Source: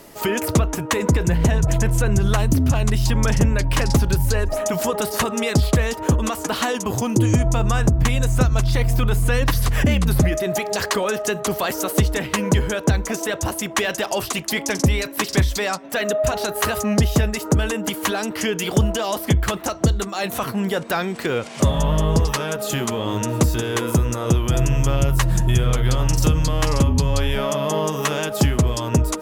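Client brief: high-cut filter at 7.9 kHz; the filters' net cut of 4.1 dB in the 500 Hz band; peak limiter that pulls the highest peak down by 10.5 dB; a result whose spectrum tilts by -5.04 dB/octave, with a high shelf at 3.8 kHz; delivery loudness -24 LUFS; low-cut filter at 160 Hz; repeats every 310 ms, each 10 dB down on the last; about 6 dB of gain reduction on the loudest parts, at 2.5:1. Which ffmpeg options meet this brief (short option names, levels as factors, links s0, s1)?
-af "highpass=160,lowpass=7900,equalizer=f=500:t=o:g=-5,highshelf=f=3800:g=-7,acompressor=threshold=0.0562:ratio=2.5,alimiter=limit=0.075:level=0:latency=1,aecho=1:1:310|620|930|1240:0.316|0.101|0.0324|0.0104,volume=2.37"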